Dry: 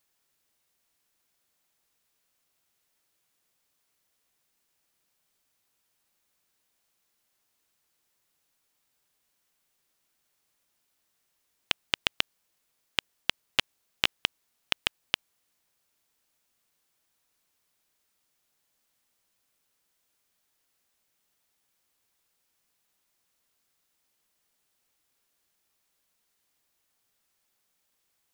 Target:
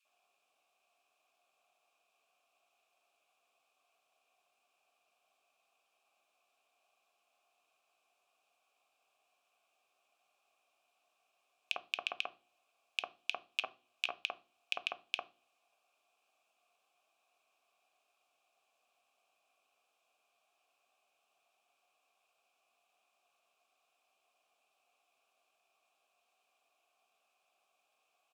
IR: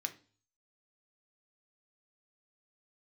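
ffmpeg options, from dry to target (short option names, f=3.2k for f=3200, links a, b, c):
-filter_complex "[0:a]bandreject=f=60:t=h:w=6,bandreject=f=120:t=h:w=6,bandreject=f=180:t=h:w=6,bandreject=f=240:t=h:w=6,bandreject=f=300:t=h:w=6,bandreject=f=360:t=h:w=6,acrossover=split=1700[a][b];[a]adelay=50[c];[c][b]amix=inputs=2:normalize=0,acompressor=threshold=-37dB:ratio=4,asplit=3[d][e][f];[d]bandpass=f=730:t=q:w=8,volume=0dB[g];[e]bandpass=f=1.09k:t=q:w=8,volume=-6dB[h];[f]bandpass=f=2.44k:t=q:w=8,volume=-9dB[i];[g][h][i]amix=inputs=3:normalize=0,asplit=2[j][k];[1:a]atrim=start_sample=2205,highshelf=f=6.2k:g=10[l];[k][l]afir=irnorm=-1:irlink=0,volume=-2dB[m];[j][m]amix=inputs=2:normalize=0,volume=13dB"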